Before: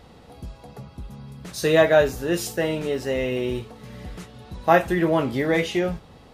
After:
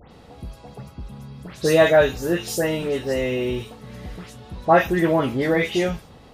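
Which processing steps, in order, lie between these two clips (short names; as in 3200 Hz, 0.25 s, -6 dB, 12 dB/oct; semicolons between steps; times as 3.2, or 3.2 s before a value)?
dispersion highs, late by 0.117 s, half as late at 2900 Hz; gain +1.5 dB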